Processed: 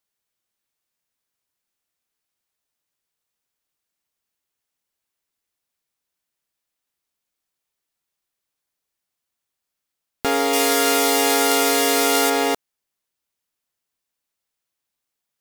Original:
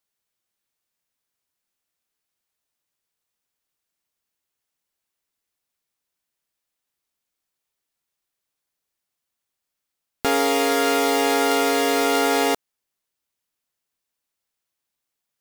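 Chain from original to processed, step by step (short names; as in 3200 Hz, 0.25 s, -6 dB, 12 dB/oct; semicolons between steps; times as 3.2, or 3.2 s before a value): 10.53–12.3 bell 13000 Hz +9.5 dB 2.3 oct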